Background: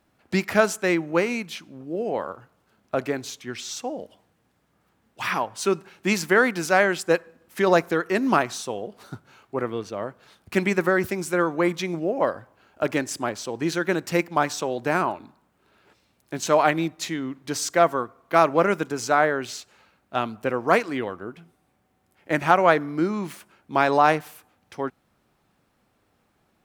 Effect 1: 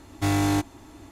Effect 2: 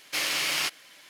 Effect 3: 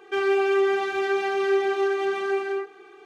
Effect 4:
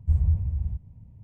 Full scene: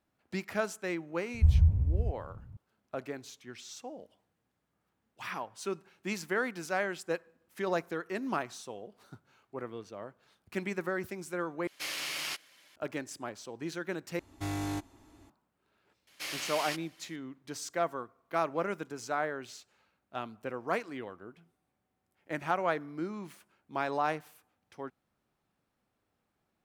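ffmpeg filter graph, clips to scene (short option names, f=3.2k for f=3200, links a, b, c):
-filter_complex "[2:a]asplit=2[a][b];[0:a]volume=-13dB,asplit=3[c][d][e];[c]atrim=end=11.674[f];[a]atrim=end=1.09,asetpts=PTS-STARTPTS,volume=-9dB[g];[d]atrim=start=12.756:end=14.194[h];[1:a]atrim=end=1.11,asetpts=PTS-STARTPTS,volume=-12dB[i];[e]atrim=start=15.296[j];[4:a]atrim=end=1.23,asetpts=PTS-STARTPTS,volume=-0.5dB,afade=t=in:d=0.004:c=hsin,afade=t=out:st=1.226:d=0.004:c=hsin,adelay=1340[k];[b]atrim=end=1.09,asetpts=PTS-STARTPTS,volume=-10.5dB,afade=t=in:d=0.004:c=hsin,afade=t=out:st=1.086:d=0.004:c=hsin,adelay=16070[l];[f][g]acrossfade=d=0.004:c1=hsin:c2=hsin[m];[m][h]acrossfade=d=0.004:c1=hsin:c2=hsin[n];[n][i]acrossfade=d=0.004:c1=hsin:c2=hsin[o];[o][j]acrossfade=d=0.004:c1=hsin:c2=hsin[p];[p][k][l]amix=inputs=3:normalize=0"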